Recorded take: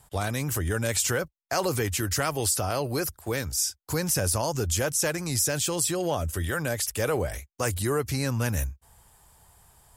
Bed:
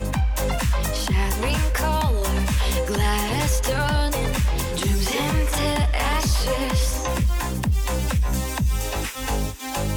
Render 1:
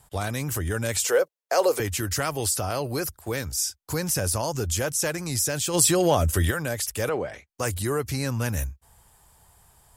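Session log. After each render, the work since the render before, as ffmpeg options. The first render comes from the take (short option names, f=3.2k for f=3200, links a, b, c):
-filter_complex "[0:a]asettb=1/sr,asplit=3[a][b][c];[a]atrim=end=1.044[d];[b]atrim=start=1.04:end=1.8,asetpts=PTS-STARTPTS,afade=t=in:d=0.004:c=qsin,afade=t=out:st=0.756:d=0.004:c=qsin,highpass=f=480:t=q:w=3.2[e];[c]atrim=start=1.796[f];[d][e]acrossfade=d=0.004:c1=hsin:c2=qsin[g];[g][f]acrossfade=d=0.004:c1=qsin:c2=hsin,asplit=3[h][i][j];[h]afade=t=out:st=5.73:d=0.02[k];[i]acontrast=87,afade=t=in:st=5.73:d=0.02,afade=t=out:st=6.5:d=0.02[l];[j]afade=t=in:st=6.5:d=0.02[m];[k][l][m]amix=inputs=3:normalize=0,asettb=1/sr,asplit=3[n][o][p];[n]atrim=end=7.094[q];[o]atrim=start=7.09:end=7.49,asetpts=PTS-STARTPTS,afade=t=in:d=0.004:c=qsin,afade=t=out:st=0.396:d=0.004:c=qsin,highpass=180,lowpass=3.7k[r];[p]atrim=start=7.486[s];[q][r]acrossfade=d=0.004:c1=hsin:c2=qsin[t];[t][s]acrossfade=d=0.004:c1=qsin:c2=hsin"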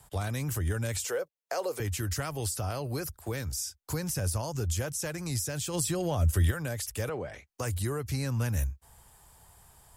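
-filter_complex "[0:a]acrossover=split=150[a][b];[b]acompressor=threshold=-39dB:ratio=2[c];[a][c]amix=inputs=2:normalize=0"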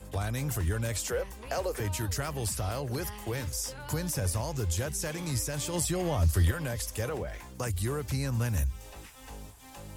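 -filter_complex "[1:a]volume=-21dB[a];[0:a][a]amix=inputs=2:normalize=0"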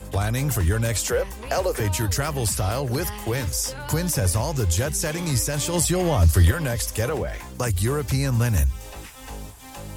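-af "volume=8.5dB"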